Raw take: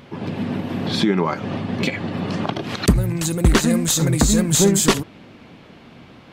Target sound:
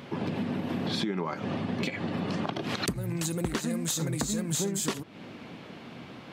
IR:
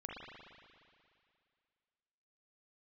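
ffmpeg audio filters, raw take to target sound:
-af "highpass=110,acompressor=threshold=-28dB:ratio=6"

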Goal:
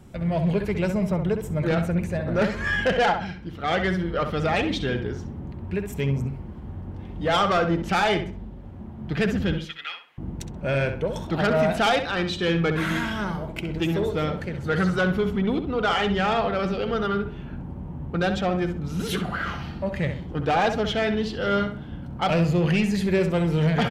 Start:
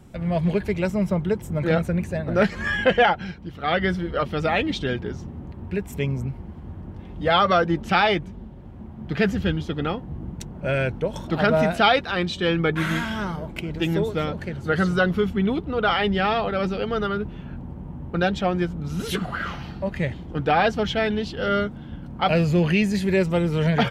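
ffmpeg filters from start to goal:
-filter_complex "[0:a]asoftclip=type=tanh:threshold=-16dB,asettb=1/sr,asplit=3[a][b][c];[a]atrim=end=9.584[d];[b]atrim=start=9.58:end=10.18,asetpts=PTS-STARTPTS,afade=t=in:d=0.004:c=qsin,afade=t=out:st=0.596:d=0.004:c=qsin,highpass=f=2.2k:t=q:w=2[e];[c]atrim=start=10.176[f];[d][e]acrossfade=d=0.004:c1=hsin:c2=qsin[g];[g][f]acrossfade=d=0.004:c1=qsin:c2=hsin,asplit=2[h][i];[i]adelay=65,lowpass=f=3.1k:p=1,volume=-7.5dB,asplit=2[j][k];[k]adelay=65,lowpass=f=3.1k:p=1,volume=0.33,asplit=2[l][m];[m]adelay=65,lowpass=f=3.1k:p=1,volume=0.33,asplit=2[n][o];[o]adelay=65,lowpass=f=3.1k:p=1,volume=0.33[p];[j][l][n][p]amix=inputs=4:normalize=0[q];[h][q]amix=inputs=2:normalize=0"

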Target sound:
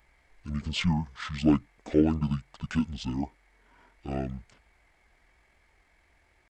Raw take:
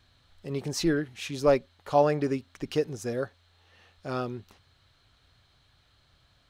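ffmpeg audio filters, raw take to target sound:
-af "asetrate=23361,aresample=44100,atempo=1.88775,aemphasis=mode=production:type=50fm"

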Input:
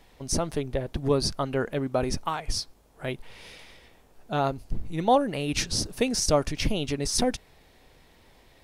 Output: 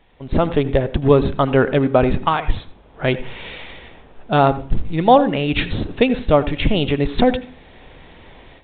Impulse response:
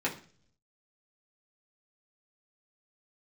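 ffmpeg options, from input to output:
-filter_complex "[0:a]asplit=2[a][b];[1:a]atrim=start_sample=2205,adelay=78[c];[b][c]afir=irnorm=-1:irlink=0,volume=-22dB[d];[a][d]amix=inputs=2:normalize=0,dynaudnorm=f=190:g=3:m=14dB" -ar 8000 -c:a pcm_alaw

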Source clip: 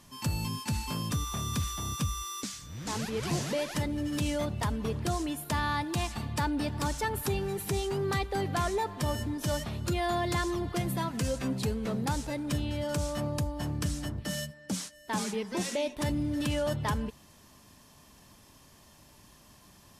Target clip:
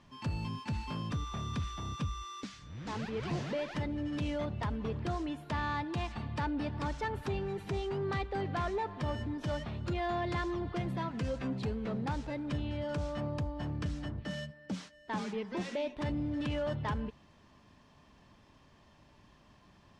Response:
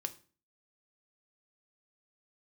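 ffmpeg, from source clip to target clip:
-af "lowpass=3.2k,asoftclip=type=tanh:threshold=-22dB,volume=-3dB"

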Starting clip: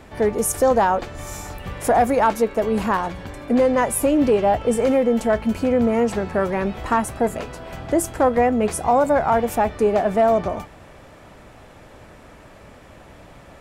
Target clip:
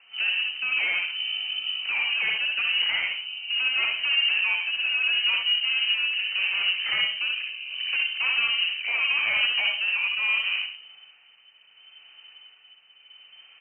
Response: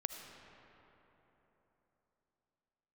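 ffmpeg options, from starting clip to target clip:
-filter_complex "[0:a]afwtdn=0.0355,equalizer=f=290:t=o:w=2.3:g=5,bandreject=f=60:t=h:w=6,bandreject=f=120:t=h:w=6,bandreject=f=180:t=h:w=6,bandreject=f=240:t=h:w=6,bandreject=f=300:t=h:w=6,asplit=2[a][b];[b]acompressor=threshold=-29dB:ratio=6,volume=0dB[c];[a][c]amix=inputs=2:normalize=0,volume=12dB,asoftclip=hard,volume=-12dB,tremolo=f=0.74:d=0.52,acrossover=split=140[d][e];[e]asoftclip=type=tanh:threshold=-21dB[f];[d][f]amix=inputs=2:normalize=0,aecho=1:1:62|75:0.562|0.398[g];[1:a]atrim=start_sample=2205,afade=t=out:st=0.2:d=0.01,atrim=end_sample=9261,asetrate=52920,aresample=44100[h];[g][h]afir=irnorm=-1:irlink=0,lowpass=f=2.6k:t=q:w=0.5098,lowpass=f=2.6k:t=q:w=0.6013,lowpass=f=2.6k:t=q:w=0.9,lowpass=f=2.6k:t=q:w=2.563,afreqshift=-3100"

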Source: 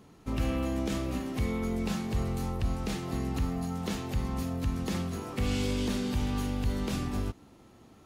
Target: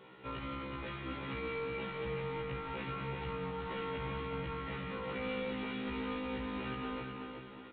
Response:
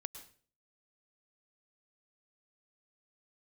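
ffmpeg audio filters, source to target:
-filter_complex "[0:a]highpass=150,equalizer=f=2.2k:w=0.87:g=8,aecho=1:1:2.2:0.45,acrossover=split=220|2800[a][b][c];[c]acompressor=threshold=-60dB:ratio=6[d];[a][b][d]amix=inputs=3:normalize=0,alimiter=level_in=7dB:limit=-24dB:level=0:latency=1:release=71,volume=-7dB,aresample=8000,volume=36dB,asoftclip=hard,volume=-36dB,aresample=44100,aecho=1:1:385|770|1155|1540:0.531|0.196|0.0727|0.0269[e];[1:a]atrim=start_sample=2205,asetrate=27783,aresample=44100[f];[e][f]afir=irnorm=-1:irlink=0,asetrate=45938,aresample=44100,afftfilt=real='re*1.73*eq(mod(b,3),0)':imag='im*1.73*eq(mod(b,3),0)':win_size=2048:overlap=0.75,volume=3dB"

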